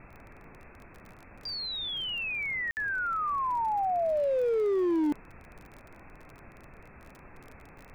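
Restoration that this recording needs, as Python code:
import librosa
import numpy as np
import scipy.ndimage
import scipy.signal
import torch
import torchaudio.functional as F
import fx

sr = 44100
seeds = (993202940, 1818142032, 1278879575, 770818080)

y = fx.fix_declip(x, sr, threshold_db=-24.0)
y = fx.fix_declick_ar(y, sr, threshold=6.5)
y = fx.fix_interpolate(y, sr, at_s=(2.71,), length_ms=59.0)
y = fx.noise_reduce(y, sr, print_start_s=0.82, print_end_s=1.32, reduce_db=24.0)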